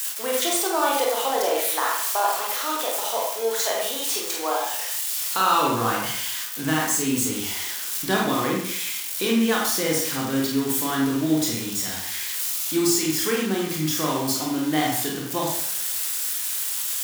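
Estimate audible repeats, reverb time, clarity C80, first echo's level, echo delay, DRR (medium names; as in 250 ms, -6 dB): no echo, 0.75 s, 5.0 dB, no echo, no echo, -2.5 dB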